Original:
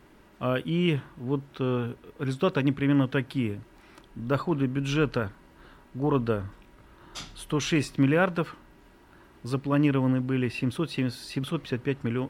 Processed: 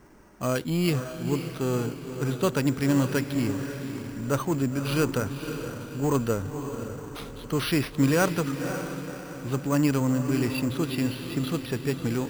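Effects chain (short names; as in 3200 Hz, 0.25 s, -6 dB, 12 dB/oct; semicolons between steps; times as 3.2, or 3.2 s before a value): low-pass opened by the level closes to 2300 Hz, open at -19.5 dBFS; in parallel at -12 dB: wavefolder -28 dBFS; on the sum: diffused feedback echo 0.533 s, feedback 46%, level -8 dB; careless resampling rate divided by 6×, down none, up hold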